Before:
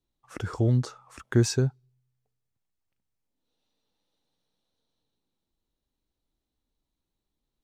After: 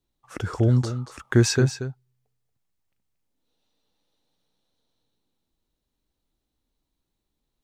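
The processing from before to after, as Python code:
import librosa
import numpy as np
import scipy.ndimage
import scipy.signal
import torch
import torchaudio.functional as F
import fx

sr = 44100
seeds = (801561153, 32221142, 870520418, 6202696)

y = fx.peak_eq(x, sr, hz=2000.0, db=fx.line((1.23, 1.5), (1.63, 9.0)), octaves=2.1, at=(1.23, 1.63), fade=0.02)
y = y + 10.0 ** (-11.0 / 20.0) * np.pad(y, (int(231 * sr / 1000.0), 0))[:len(y)]
y = y * 10.0 ** (3.5 / 20.0)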